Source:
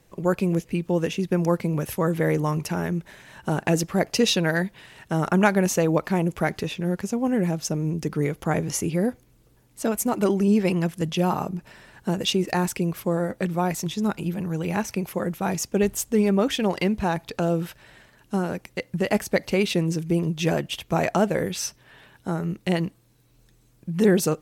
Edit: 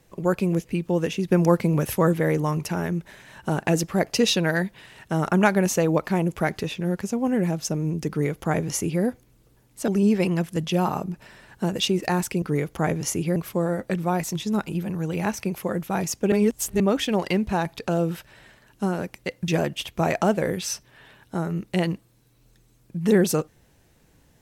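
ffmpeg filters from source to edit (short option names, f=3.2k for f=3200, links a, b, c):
-filter_complex "[0:a]asplit=9[a][b][c][d][e][f][g][h][i];[a]atrim=end=1.282[j];[b]atrim=start=1.278:end=2.132,asetpts=PTS-STARTPTS,volume=3.5dB[k];[c]atrim=start=2.128:end=9.882[l];[d]atrim=start=10.328:end=12.872[m];[e]atrim=start=8.088:end=9.032[n];[f]atrim=start=12.868:end=15.832[o];[g]atrim=start=15.828:end=16.312,asetpts=PTS-STARTPTS,areverse[p];[h]atrim=start=16.308:end=18.992[q];[i]atrim=start=20.408[r];[j][k]acrossfade=d=0.004:c1=hsin:c2=hsin[s];[s][l]acrossfade=d=0.004:c1=hsin:c2=hsin[t];[t][m]acrossfade=d=0.004:c1=hsin:c2=hsin[u];[u][n]acrossfade=d=0.004:c1=hsin:c2=hsin[v];[v][o]acrossfade=d=0.004:c1=hsin:c2=hsin[w];[w][p]acrossfade=d=0.004:c1=hsin:c2=hsin[x];[x][q]acrossfade=d=0.004:c1=hsin:c2=hsin[y];[y][r]acrossfade=d=0.004:c1=hsin:c2=hsin"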